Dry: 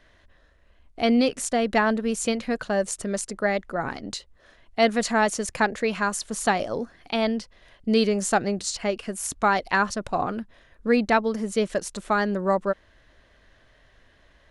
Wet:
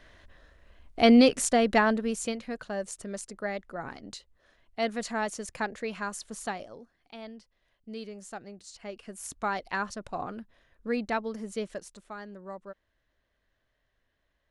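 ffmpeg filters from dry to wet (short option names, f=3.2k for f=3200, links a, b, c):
-af "volume=12.5dB,afade=t=out:st=1.2:d=1.21:silence=0.251189,afade=t=out:st=6.32:d=0.47:silence=0.316228,afade=t=in:st=8.67:d=0.63:silence=0.316228,afade=t=out:st=11.55:d=0.53:silence=0.334965"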